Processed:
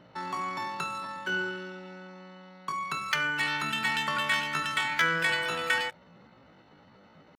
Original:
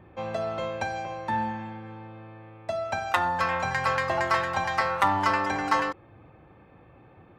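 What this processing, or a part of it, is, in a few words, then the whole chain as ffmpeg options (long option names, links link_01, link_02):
chipmunk voice: -af "asetrate=74167,aresample=44100,atempo=0.594604,volume=-3dB"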